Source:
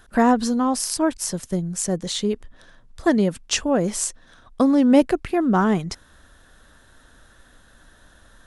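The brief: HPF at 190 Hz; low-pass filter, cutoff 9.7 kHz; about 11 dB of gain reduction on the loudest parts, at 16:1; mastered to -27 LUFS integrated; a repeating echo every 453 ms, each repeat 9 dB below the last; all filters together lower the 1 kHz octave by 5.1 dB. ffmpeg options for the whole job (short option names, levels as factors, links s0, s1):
-af "highpass=190,lowpass=9700,equalizer=f=1000:t=o:g=-7,acompressor=threshold=0.0794:ratio=16,aecho=1:1:453|906|1359|1812:0.355|0.124|0.0435|0.0152,volume=1.12"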